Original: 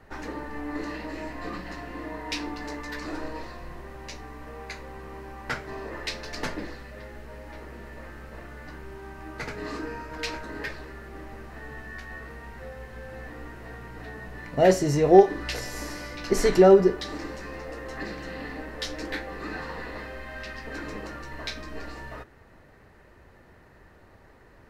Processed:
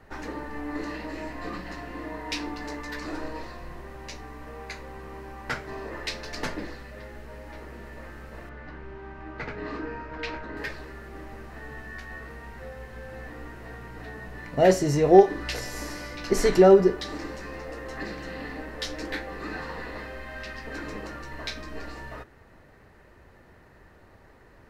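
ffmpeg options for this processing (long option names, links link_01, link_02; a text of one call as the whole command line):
ffmpeg -i in.wav -filter_complex "[0:a]asettb=1/sr,asplit=3[link_01][link_02][link_03];[link_01]atrim=end=8.494[link_04];[link_02]atrim=start=8.49:end=10.57,asetpts=PTS-STARTPTS,afade=type=in:duration=0.004:curve=qsin,afade=type=out:start_time=2.076:duration=0.004:curve=qsin,lowpass=3100[link_05];[link_03]atrim=start=10.566[link_06];[link_04][link_05]acrossfade=duration=0.004:curve1=hsin:curve2=qsin[link_07];[link_07][link_06]acrossfade=duration=0.004:curve1=qsin:curve2=hsin" out.wav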